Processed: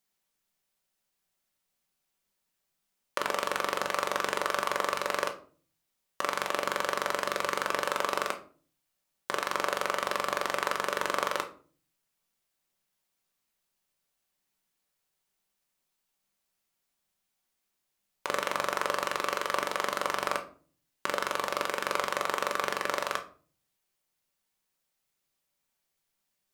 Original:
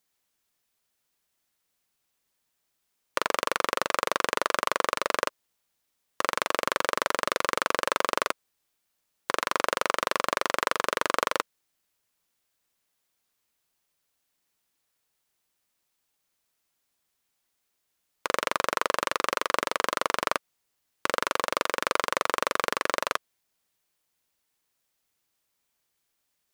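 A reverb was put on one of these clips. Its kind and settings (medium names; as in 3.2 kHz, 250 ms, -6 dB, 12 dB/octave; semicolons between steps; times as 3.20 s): simulated room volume 310 m³, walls furnished, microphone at 1.1 m; trim -4.5 dB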